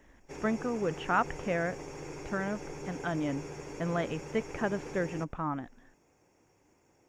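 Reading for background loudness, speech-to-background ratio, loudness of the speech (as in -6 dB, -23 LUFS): -43.5 LUFS, 9.5 dB, -34.0 LUFS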